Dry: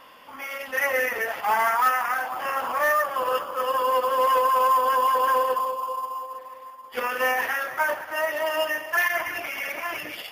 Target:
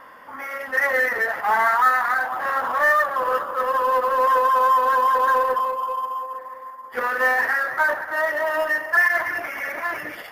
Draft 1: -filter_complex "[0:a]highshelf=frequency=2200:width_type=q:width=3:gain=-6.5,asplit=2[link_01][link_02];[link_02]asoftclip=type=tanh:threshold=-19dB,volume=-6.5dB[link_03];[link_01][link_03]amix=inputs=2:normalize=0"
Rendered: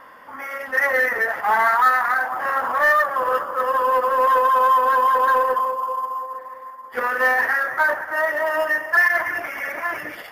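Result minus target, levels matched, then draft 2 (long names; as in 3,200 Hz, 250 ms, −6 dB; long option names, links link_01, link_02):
soft clipping: distortion −7 dB
-filter_complex "[0:a]highshelf=frequency=2200:width_type=q:width=3:gain=-6.5,asplit=2[link_01][link_02];[link_02]asoftclip=type=tanh:threshold=-28.5dB,volume=-6.5dB[link_03];[link_01][link_03]amix=inputs=2:normalize=0"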